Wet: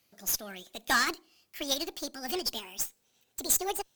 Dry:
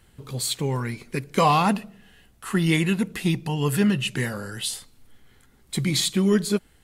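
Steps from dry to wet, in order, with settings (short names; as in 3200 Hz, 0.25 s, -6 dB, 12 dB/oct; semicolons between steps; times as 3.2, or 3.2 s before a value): speed glide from 148% -> 198%; HPF 330 Hz 6 dB/oct; high shelf 2400 Hz +9.5 dB; added harmonics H 8 -23 dB, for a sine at -2 dBFS; upward expander 1.5:1, over -26 dBFS; gain -8.5 dB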